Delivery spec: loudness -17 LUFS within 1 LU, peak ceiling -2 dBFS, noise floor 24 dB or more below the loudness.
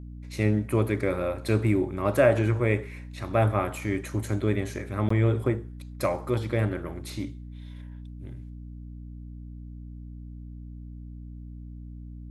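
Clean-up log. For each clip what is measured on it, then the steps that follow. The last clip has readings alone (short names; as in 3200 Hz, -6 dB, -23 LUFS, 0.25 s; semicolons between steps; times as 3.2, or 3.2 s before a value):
dropouts 1; longest dropout 14 ms; hum 60 Hz; harmonics up to 300 Hz; hum level -38 dBFS; loudness -27.0 LUFS; peak -9.0 dBFS; loudness target -17.0 LUFS
-> interpolate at 5.09, 14 ms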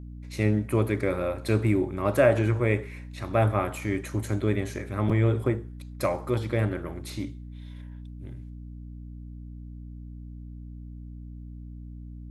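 dropouts 0; hum 60 Hz; harmonics up to 300 Hz; hum level -38 dBFS
-> notches 60/120/180/240/300 Hz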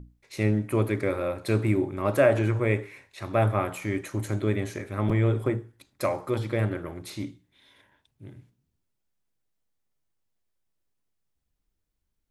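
hum none; loudness -27.0 LUFS; peak -9.0 dBFS; loudness target -17.0 LUFS
-> gain +10 dB; limiter -2 dBFS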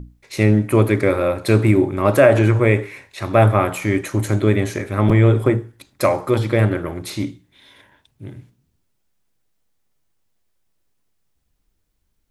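loudness -17.5 LUFS; peak -2.0 dBFS; noise floor -68 dBFS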